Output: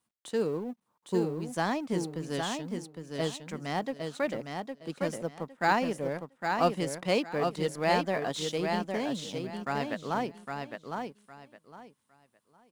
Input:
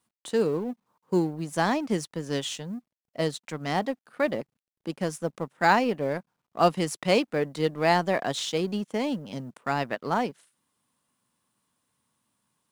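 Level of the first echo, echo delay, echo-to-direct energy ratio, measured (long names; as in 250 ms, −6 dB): −5.0 dB, 809 ms, −5.0 dB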